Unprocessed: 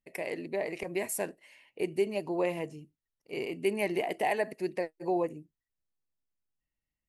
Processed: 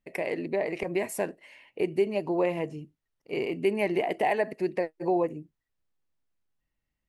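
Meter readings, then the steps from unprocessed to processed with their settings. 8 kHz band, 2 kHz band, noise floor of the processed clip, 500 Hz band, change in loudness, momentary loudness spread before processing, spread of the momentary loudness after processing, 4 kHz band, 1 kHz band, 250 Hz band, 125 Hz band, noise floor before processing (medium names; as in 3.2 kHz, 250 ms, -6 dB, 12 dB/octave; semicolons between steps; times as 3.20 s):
no reading, +2.5 dB, -84 dBFS, +4.0 dB, +4.0 dB, 9 LU, 8 LU, +1.0 dB, +3.5 dB, +4.5 dB, +5.0 dB, under -85 dBFS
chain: treble shelf 4.9 kHz -12 dB; in parallel at -0.5 dB: compression, threshold -36 dBFS, peak gain reduction 12.5 dB; on the sum: trim +1.5 dB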